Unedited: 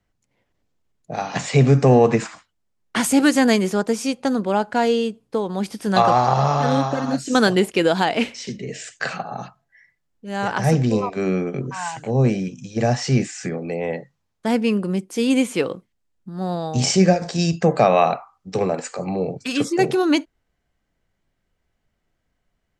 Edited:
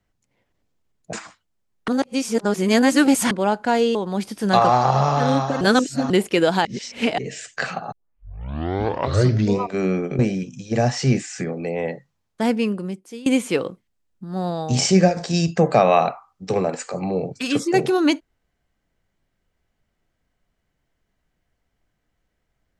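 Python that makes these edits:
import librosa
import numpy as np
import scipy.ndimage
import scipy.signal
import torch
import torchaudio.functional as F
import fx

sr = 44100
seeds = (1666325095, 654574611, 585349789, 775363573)

y = fx.edit(x, sr, fx.cut(start_s=1.13, length_s=1.08),
    fx.reverse_span(start_s=2.96, length_s=1.43),
    fx.cut(start_s=5.03, length_s=0.35),
    fx.reverse_span(start_s=7.04, length_s=0.49),
    fx.reverse_span(start_s=8.08, length_s=0.53),
    fx.tape_start(start_s=9.35, length_s=1.71),
    fx.cut(start_s=11.62, length_s=0.62),
    fx.fade_out_to(start_s=14.51, length_s=0.8, floor_db=-22.0), tone=tone)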